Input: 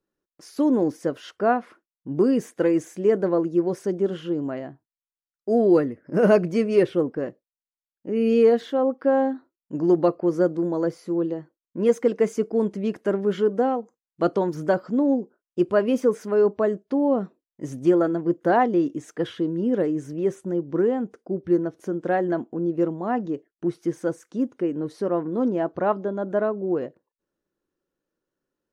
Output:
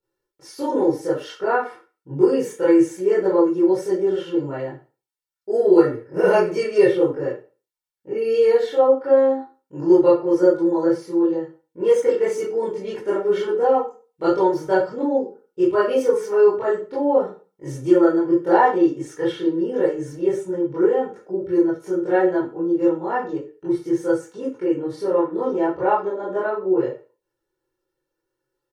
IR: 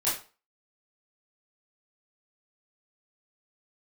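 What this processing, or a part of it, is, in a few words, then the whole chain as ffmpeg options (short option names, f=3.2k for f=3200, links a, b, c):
microphone above a desk: -filter_complex "[0:a]aecho=1:1:2.2:0.76[a];[1:a]atrim=start_sample=2205[b];[a][b]afir=irnorm=-1:irlink=0,volume=-6.5dB"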